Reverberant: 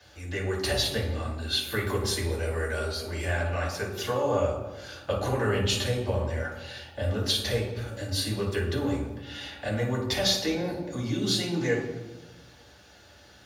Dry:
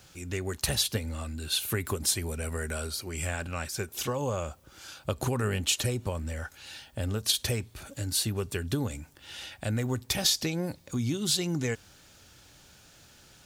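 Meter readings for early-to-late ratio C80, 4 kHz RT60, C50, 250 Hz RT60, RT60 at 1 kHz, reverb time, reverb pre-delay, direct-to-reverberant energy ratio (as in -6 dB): 6.5 dB, 0.80 s, 3.5 dB, 1.5 s, 1.0 s, 1.2 s, 3 ms, -6.5 dB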